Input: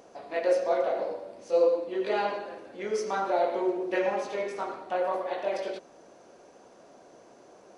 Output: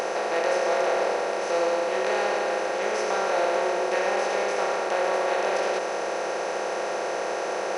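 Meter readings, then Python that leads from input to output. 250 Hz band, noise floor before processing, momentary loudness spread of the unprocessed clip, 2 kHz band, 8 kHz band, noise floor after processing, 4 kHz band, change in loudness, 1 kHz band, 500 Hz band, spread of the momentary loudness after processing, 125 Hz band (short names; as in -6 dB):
+2.0 dB, -55 dBFS, 11 LU, +10.5 dB, +14.0 dB, -29 dBFS, +11.0 dB, +3.5 dB, +7.0 dB, +3.5 dB, 5 LU, n/a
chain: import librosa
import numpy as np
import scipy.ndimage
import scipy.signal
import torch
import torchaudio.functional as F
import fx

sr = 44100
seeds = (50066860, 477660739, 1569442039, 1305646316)

y = fx.bin_compress(x, sr, power=0.2)
y = fx.peak_eq(y, sr, hz=370.0, db=-7.5, octaves=2.5)
y = fx.hum_notches(y, sr, base_hz=60, count=6)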